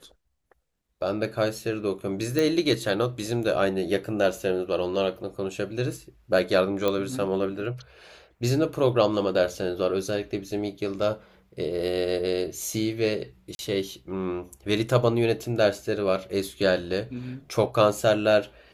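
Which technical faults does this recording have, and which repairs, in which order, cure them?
2.39 s: pop
6.88 s: pop -12 dBFS
13.55–13.59 s: dropout 41 ms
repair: de-click; interpolate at 13.55 s, 41 ms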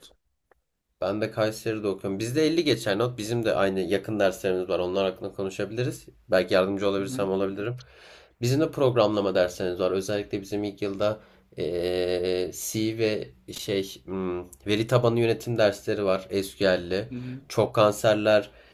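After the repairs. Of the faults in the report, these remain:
nothing left

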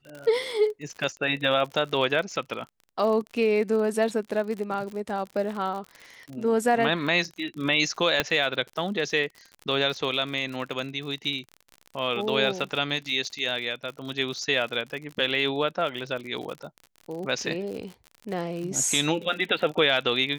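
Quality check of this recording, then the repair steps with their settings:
crackle 57 per s -33 dBFS
8.20 s: pop -7 dBFS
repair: de-click

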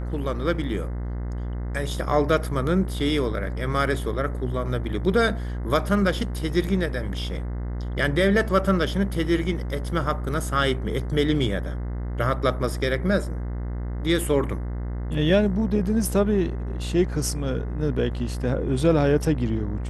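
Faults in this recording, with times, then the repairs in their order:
buzz 60 Hz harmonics 35 -29 dBFS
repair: de-hum 60 Hz, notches 35

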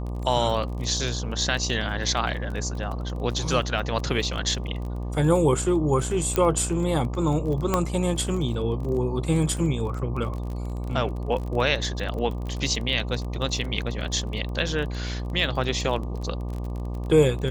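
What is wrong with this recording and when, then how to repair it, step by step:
buzz 60 Hz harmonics 20 -30 dBFS
crackle 27 per s -31 dBFS
6.36 s: pop -8 dBFS
7.74 s: pop -8 dBFS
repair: de-click; de-hum 60 Hz, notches 20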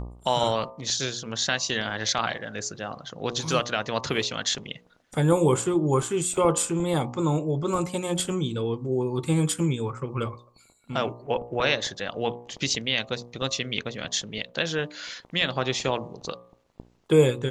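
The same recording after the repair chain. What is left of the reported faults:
6.36 s: pop
7.74 s: pop

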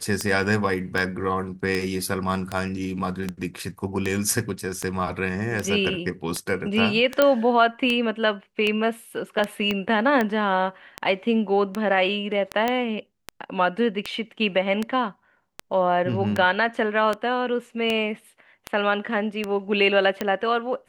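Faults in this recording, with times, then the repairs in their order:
tick 78 rpm -11 dBFS
7.22 s: pop -5 dBFS
9.71 s: pop -12 dBFS
12.68 s: pop -10 dBFS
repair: de-click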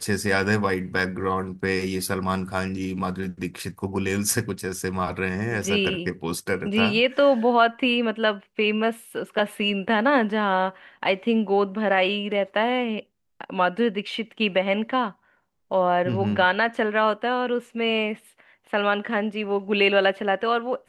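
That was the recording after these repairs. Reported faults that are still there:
9.71 s: pop

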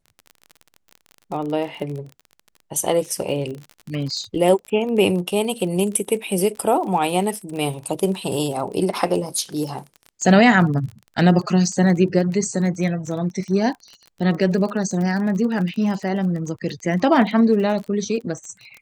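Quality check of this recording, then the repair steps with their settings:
crackle 30 per s -29 dBFS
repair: de-click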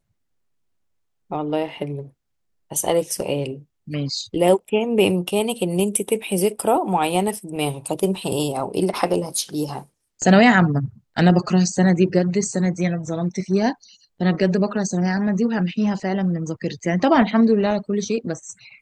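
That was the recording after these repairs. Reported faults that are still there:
nothing left

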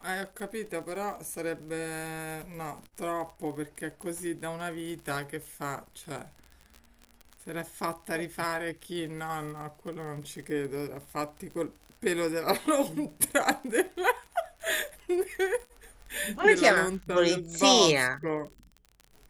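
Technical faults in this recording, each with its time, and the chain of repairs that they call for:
crackle 36 per s -37 dBFS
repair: de-click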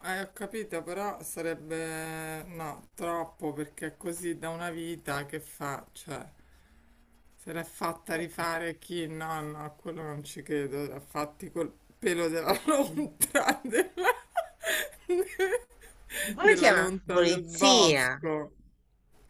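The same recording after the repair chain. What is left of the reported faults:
nothing left

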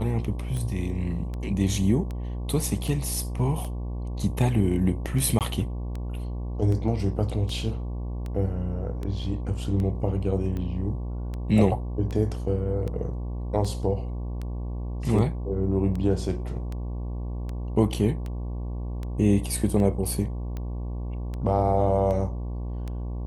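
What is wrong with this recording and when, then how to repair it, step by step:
buzz 60 Hz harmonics 19 -31 dBFS
tick 78 rpm -22 dBFS
5.39–5.41 s: dropout 18 ms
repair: de-click; de-hum 60 Hz, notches 19; interpolate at 5.39 s, 18 ms

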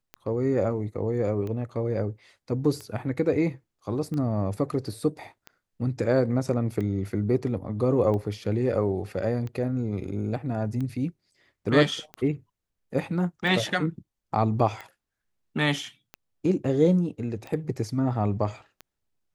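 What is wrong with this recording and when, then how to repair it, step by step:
tick 45 rpm -23 dBFS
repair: de-click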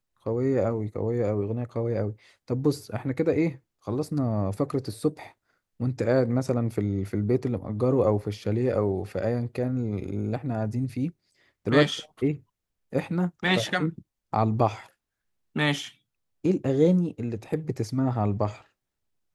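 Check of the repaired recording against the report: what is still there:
nothing left

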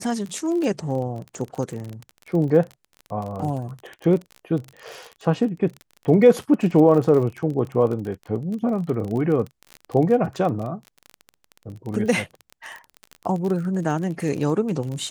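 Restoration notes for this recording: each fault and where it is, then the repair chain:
crackle 32 per s -28 dBFS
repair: de-click

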